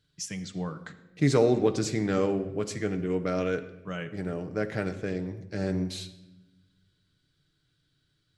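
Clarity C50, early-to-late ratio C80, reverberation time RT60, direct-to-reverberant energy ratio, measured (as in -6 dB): 13.0 dB, 14.5 dB, 1.0 s, 7.5 dB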